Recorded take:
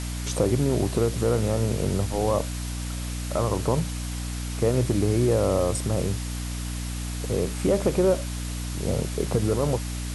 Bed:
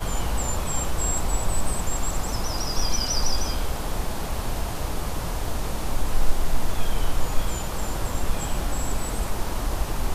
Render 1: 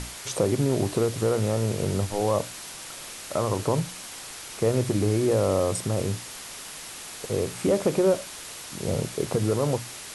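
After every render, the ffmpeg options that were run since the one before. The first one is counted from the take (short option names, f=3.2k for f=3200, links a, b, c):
-af "bandreject=f=60:t=h:w=6,bandreject=f=120:t=h:w=6,bandreject=f=180:t=h:w=6,bandreject=f=240:t=h:w=6,bandreject=f=300:t=h:w=6"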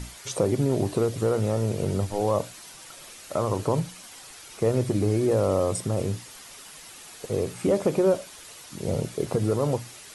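-af "afftdn=nr=8:nf=-40"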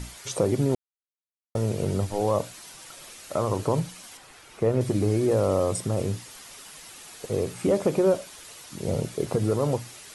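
-filter_complex "[0:a]asettb=1/sr,asplit=3[a][b][c];[a]atrim=end=4.174[d];[b]atrim=start=4.17:end=4.81,asetpts=PTS-STARTPTS,afade=t=in:d=0.004:c=qsin,afade=t=out:st=0.636:d=0.004:c=qsin,acrossover=split=2900[e][f];[f]acompressor=threshold=-52dB:ratio=4:attack=1:release=60[g];[e][g]amix=inputs=2:normalize=0[h];[c]atrim=start=4.806[i];[d][h]acrossfade=d=0.004:c1=hsin:c2=qsin[j];[j][i]acrossfade=d=0.004:c1=qsin:c2=hsin,asplit=3[k][l][m];[k]atrim=end=0.75,asetpts=PTS-STARTPTS,afade=t=out:st=0.746:d=0.004:c=hsin[n];[l]atrim=start=0.75:end=1.55,asetpts=PTS-STARTPTS,volume=0[o];[m]atrim=start=1.55,asetpts=PTS-STARTPTS,afade=t=in:d=0.004:c=hsin[p];[n][o][p]concat=n=3:v=0:a=1"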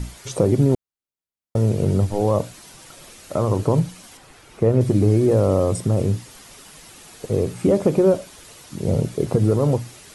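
-af "lowshelf=f=480:g=9"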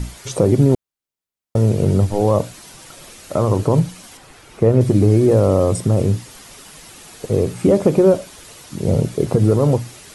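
-af "volume=3.5dB,alimiter=limit=-3dB:level=0:latency=1"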